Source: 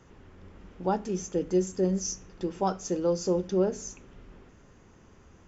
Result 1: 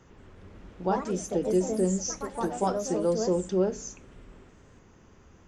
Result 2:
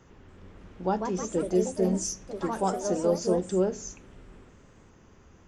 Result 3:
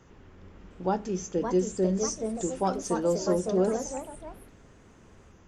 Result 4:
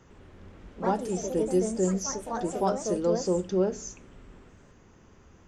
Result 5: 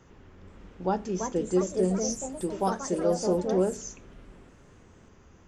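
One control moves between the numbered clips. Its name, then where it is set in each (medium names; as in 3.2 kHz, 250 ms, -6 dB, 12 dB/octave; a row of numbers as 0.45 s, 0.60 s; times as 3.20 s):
ever faster or slower copies, time: 181 ms, 286 ms, 708 ms, 106 ms, 476 ms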